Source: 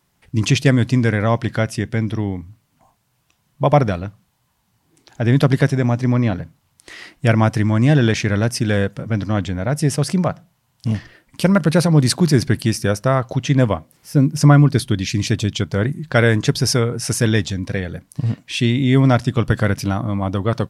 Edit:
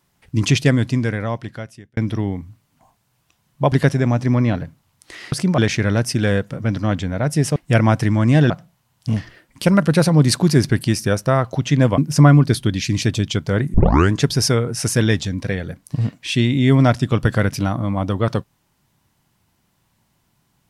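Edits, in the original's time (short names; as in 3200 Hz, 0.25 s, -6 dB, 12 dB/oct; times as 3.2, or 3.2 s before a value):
0.52–1.97 fade out
3.72–5.5 cut
7.1–8.04 swap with 10.02–10.28
13.76–14.23 cut
15.99 tape start 0.37 s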